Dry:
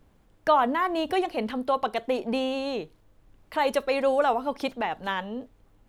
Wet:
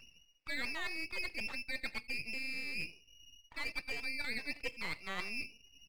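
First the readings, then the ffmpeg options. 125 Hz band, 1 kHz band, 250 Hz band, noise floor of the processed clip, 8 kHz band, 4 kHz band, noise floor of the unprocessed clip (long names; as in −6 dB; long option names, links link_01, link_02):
−9.0 dB, −25.5 dB, −20.0 dB, −66 dBFS, −4.0 dB, −6.5 dB, −61 dBFS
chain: -af "lowshelf=frequency=160:gain=-5,aecho=1:1:90|180:0.0794|0.0175,areverse,acompressor=threshold=-38dB:ratio=8,areverse,lowpass=frequency=2500:width_type=q:width=0.5098,lowpass=frequency=2500:width_type=q:width=0.6013,lowpass=frequency=2500:width_type=q:width=0.9,lowpass=frequency=2500:width_type=q:width=2.563,afreqshift=-2900,afftdn=noise_reduction=20:noise_floor=-56,equalizer=frequency=500:width=3.9:gain=9.5,aeval=exprs='max(val(0),0)':channel_layout=same,acompressor=mode=upward:threshold=-56dB:ratio=2.5,volume=4.5dB"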